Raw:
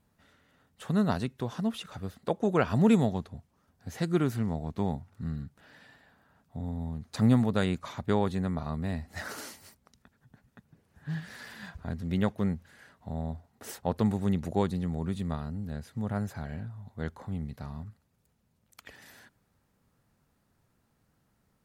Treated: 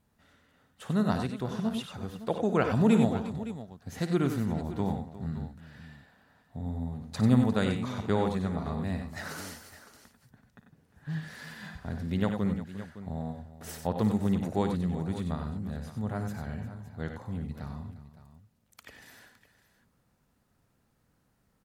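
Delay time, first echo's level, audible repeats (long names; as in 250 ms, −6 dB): 56 ms, −11.5 dB, 4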